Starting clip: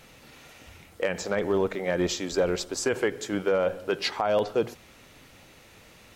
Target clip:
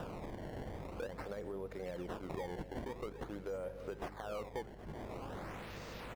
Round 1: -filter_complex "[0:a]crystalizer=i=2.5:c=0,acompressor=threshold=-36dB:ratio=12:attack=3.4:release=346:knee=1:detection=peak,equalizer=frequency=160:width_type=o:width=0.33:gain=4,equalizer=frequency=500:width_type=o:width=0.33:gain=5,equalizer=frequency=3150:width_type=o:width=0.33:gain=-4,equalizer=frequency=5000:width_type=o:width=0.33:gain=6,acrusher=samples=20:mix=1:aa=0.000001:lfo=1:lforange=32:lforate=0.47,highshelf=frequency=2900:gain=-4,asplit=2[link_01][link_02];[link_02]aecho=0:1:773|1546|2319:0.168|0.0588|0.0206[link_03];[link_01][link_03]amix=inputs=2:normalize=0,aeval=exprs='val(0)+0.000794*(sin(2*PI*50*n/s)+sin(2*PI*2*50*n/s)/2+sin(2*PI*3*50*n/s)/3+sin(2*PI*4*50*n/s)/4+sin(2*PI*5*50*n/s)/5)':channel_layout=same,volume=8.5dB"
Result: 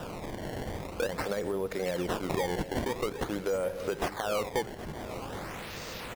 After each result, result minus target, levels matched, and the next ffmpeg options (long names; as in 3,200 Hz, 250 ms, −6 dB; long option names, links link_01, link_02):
downward compressor: peak gain reduction −11 dB; 8,000 Hz band +7.0 dB
-filter_complex "[0:a]crystalizer=i=2.5:c=0,acompressor=threshold=-48dB:ratio=12:attack=3.4:release=346:knee=1:detection=peak,equalizer=frequency=160:width_type=o:width=0.33:gain=4,equalizer=frequency=500:width_type=o:width=0.33:gain=5,equalizer=frequency=3150:width_type=o:width=0.33:gain=-4,equalizer=frequency=5000:width_type=o:width=0.33:gain=6,acrusher=samples=20:mix=1:aa=0.000001:lfo=1:lforange=32:lforate=0.47,highshelf=frequency=2900:gain=-4,asplit=2[link_01][link_02];[link_02]aecho=0:1:773|1546|2319:0.168|0.0588|0.0206[link_03];[link_01][link_03]amix=inputs=2:normalize=0,aeval=exprs='val(0)+0.000794*(sin(2*PI*50*n/s)+sin(2*PI*2*50*n/s)/2+sin(2*PI*3*50*n/s)/3+sin(2*PI*4*50*n/s)/4+sin(2*PI*5*50*n/s)/5)':channel_layout=same,volume=8.5dB"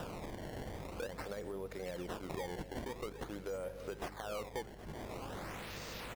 8,000 Hz band +7.5 dB
-filter_complex "[0:a]crystalizer=i=2.5:c=0,acompressor=threshold=-48dB:ratio=12:attack=3.4:release=346:knee=1:detection=peak,equalizer=frequency=160:width_type=o:width=0.33:gain=4,equalizer=frequency=500:width_type=o:width=0.33:gain=5,equalizer=frequency=3150:width_type=o:width=0.33:gain=-4,equalizer=frequency=5000:width_type=o:width=0.33:gain=6,acrusher=samples=20:mix=1:aa=0.000001:lfo=1:lforange=32:lforate=0.47,highshelf=frequency=2900:gain=-13.5,asplit=2[link_01][link_02];[link_02]aecho=0:1:773|1546|2319:0.168|0.0588|0.0206[link_03];[link_01][link_03]amix=inputs=2:normalize=0,aeval=exprs='val(0)+0.000794*(sin(2*PI*50*n/s)+sin(2*PI*2*50*n/s)/2+sin(2*PI*3*50*n/s)/3+sin(2*PI*4*50*n/s)/4+sin(2*PI*5*50*n/s)/5)':channel_layout=same,volume=8.5dB"